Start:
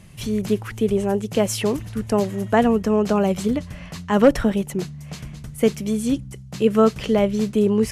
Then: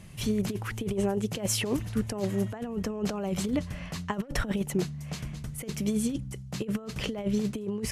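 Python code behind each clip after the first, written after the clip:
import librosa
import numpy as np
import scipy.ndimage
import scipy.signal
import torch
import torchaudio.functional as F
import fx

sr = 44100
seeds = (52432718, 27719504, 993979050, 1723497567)

y = fx.over_compress(x, sr, threshold_db=-22.0, ratio=-0.5)
y = F.gain(torch.from_numpy(y), -6.0).numpy()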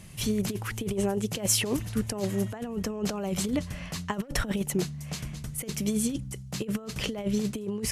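y = fx.high_shelf(x, sr, hz=3900.0, db=6.5)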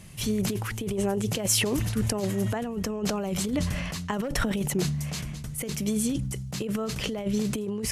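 y = fx.sustainer(x, sr, db_per_s=27.0)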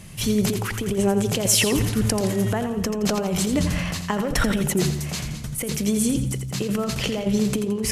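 y = fx.echo_feedback(x, sr, ms=85, feedback_pct=44, wet_db=-9)
y = F.gain(torch.from_numpy(y), 5.0).numpy()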